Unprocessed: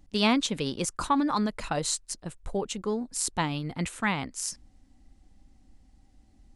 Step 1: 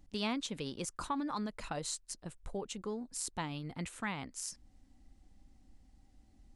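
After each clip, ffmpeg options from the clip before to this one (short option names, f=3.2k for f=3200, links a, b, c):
-af "acompressor=threshold=-42dB:ratio=1.5,volume=-4dB"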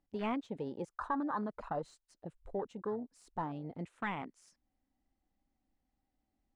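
-filter_complex "[0:a]asplit=2[a][b];[b]highpass=f=720:p=1,volume=16dB,asoftclip=type=tanh:threshold=-20dB[c];[a][c]amix=inputs=2:normalize=0,lowpass=f=1.2k:p=1,volume=-6dB,afwtdn=0.0112,volume=-1.5dB"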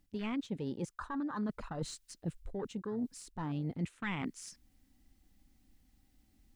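-af "areverse,acompressor=threshold=-46dB:ratio=6,areverse,equalizer=f=710:t=o:w=2.1:g=-13.5,volume=17dB"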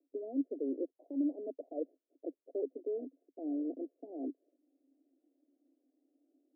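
-af "asuperpass=centerf=430:order=20:qfactor=1,volume=5dB"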